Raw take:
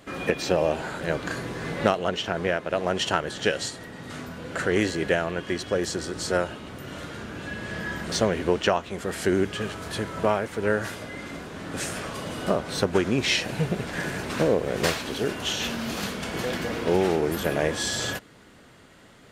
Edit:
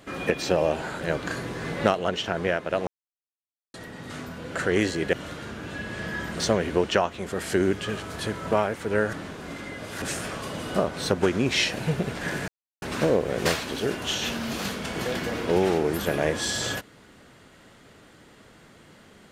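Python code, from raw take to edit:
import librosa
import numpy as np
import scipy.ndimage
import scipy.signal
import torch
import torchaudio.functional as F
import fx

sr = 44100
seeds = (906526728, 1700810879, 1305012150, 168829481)

y = fx.edit(x, sr, fx.silence(start_s=2.87, length_s=0.87),
    fx.cut(start_s=5.13, length_s=1.72),
    fx.reverse_span(start_s=10.85, length_s=0.89),
    fx.insert_silence(at_s=14.2, length_s=0.34), tone=tone)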